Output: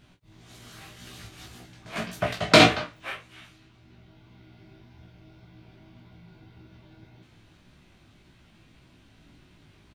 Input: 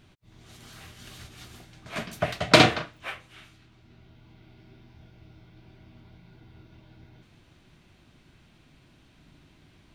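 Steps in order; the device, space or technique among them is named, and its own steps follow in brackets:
double-tracked vocal (double-tracking delay 28 ms −8 dB; chorus effect 1.8 Hz, delay 16 ms, depth 2.9 ms)
level +3.5 dB

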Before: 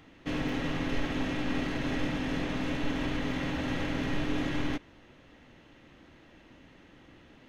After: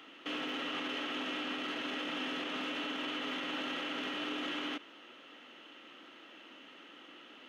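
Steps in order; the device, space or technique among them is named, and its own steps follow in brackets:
laptop speaker (high-pass filter 260 Hz 24 dB per octave; parametric band 1,300 Hz +9.5 dB 0.33 octaves; parametric band 3,000 Hz +12 dB 0.47 octaves; brickwall limiter −29.5 dBFS, peak gain reduction 10.5 dB)

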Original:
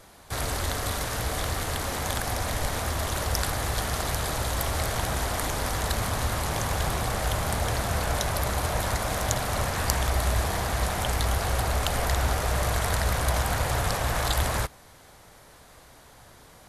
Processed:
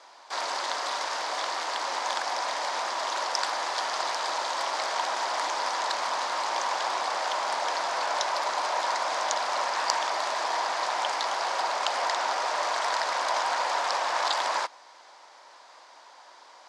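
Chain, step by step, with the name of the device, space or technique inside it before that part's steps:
phone speaker on a table (loudspeaker in its box 410–6,600 Hz, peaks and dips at 440 Hz −8 dB, 960 Hz +9 dB, 4,900 Hz +5 dB)

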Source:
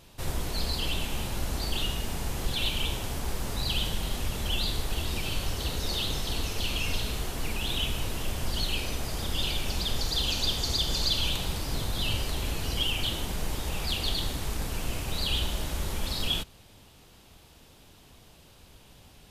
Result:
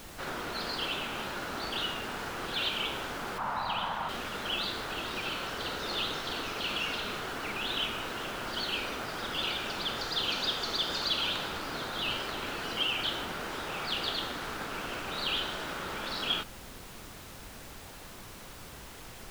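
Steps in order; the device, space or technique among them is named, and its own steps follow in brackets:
horn gramophone (band-pass filter 270–3,800 Hz; parametric band 1,400 Hz +10 dB 0.58 octaves; tape wow and flutter; pink noise bed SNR 11 dB)
0:03.38–0:04.09: drawn EQ curve 190 Hz 0 dB, 390 Hz −10 dB, 930 Hz +12 dB, 1,500 Hz 0 dB, 4,900 Hz −9 dB

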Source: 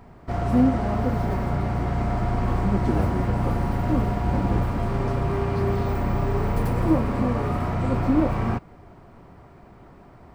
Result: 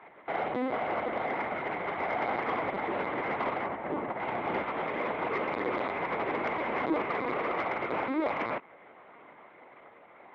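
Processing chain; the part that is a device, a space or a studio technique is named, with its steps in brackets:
0:03.65–0:04.20: low-pass filter 1,000 Hz 6 dB per octave
talking toy (linear-prediction vocoder at 8 kHz; high-pass filter 470 Hz 12 dB per octave; parametric band 2,100 Hz +11 dB 0.23 octaves; soft clipping −20.5 dBFS, distortion −21 dB)

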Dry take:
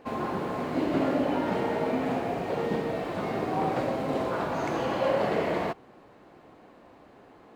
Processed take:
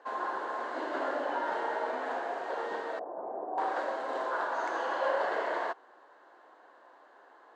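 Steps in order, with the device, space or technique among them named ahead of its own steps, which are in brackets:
phone speaker on a table (loudspeaker in its box 400–7,900 Hz, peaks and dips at 440 Hz −4 dB, 980 Hz +6 dB, 1,600 Hz +10 dB, 2,400 Hz −10 dB, 5,300 Hz −3 dB)
0:02.99–0:03.58: Chebyshev low-pass filter 770 Hz, order 3
level −4 dB

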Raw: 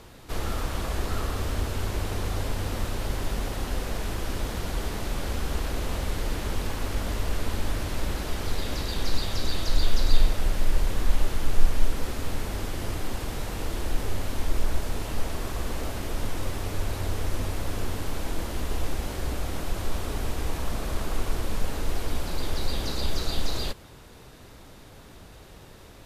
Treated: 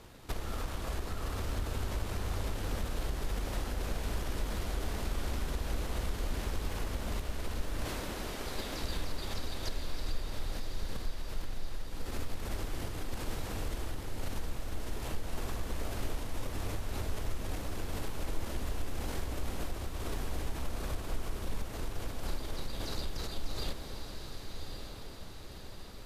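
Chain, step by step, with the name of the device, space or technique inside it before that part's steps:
0:07.85–0:08.83: high-pass filter 180 Hz 12 dB per octave
drum-bus smash (transient designer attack +9 dB, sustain +5 dB; downward compressor, threshold −22 dBFS, peak gain reduction 19 dB; soft clipping −19 dBFS, distortion −17 dB)
feedback delay with all-pass diffusion 1,139 ms, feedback 52%, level −6 dB
level −6.5 dB

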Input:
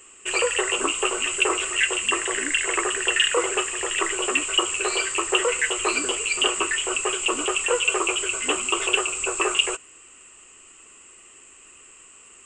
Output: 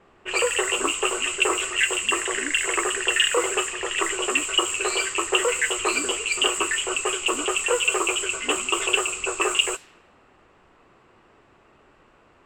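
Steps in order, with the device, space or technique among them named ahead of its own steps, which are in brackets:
cassette deck with a dynamic noise filter (white noise bed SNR 22 dB; low-pass that shuts in the quiet parts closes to 980 Hz, open at −19.5 dBFS)

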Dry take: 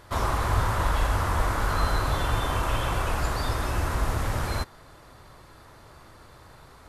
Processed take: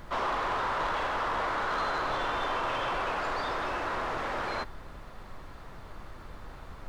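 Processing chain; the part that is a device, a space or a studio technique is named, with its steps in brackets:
aircraft cabin announcement (band-pass filter 370–3,200 Hz; soft clipping −27 dBFS, distortion −14 dB; brown noise bed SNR 10 dB)
level +2 dB

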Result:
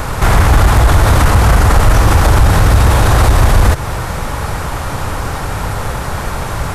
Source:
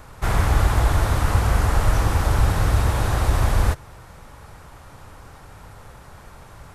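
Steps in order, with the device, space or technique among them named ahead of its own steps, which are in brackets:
loud club master (downward compressor 1.5 to 1, threshold −23 dBFS, peak gain reduction 4.5 dB; hard clipping −15 dBFS, distortion −21 dB; boost into a limiter +25 dB)
level −1 dB

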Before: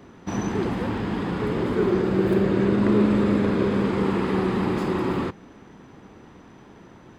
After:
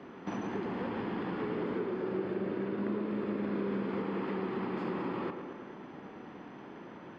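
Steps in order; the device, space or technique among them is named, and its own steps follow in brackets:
serial compression, peaks first (downward compressor 4 to 1, threshold −29 dBFS, peak gain reduction 12 dB; downward compressor 1.5 to 1, threshold −37 dBFS, peak gain reduction 4.5 dB)
three-way crossover with the lows and the highs turned down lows −16 dB, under 160 Hz, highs −22 dB, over 4,400 Hz
notch filter 3,800 Hz, Q 13
tape delay 111 ms, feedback 69%, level −6 dB, low-pass 2,700 Hz

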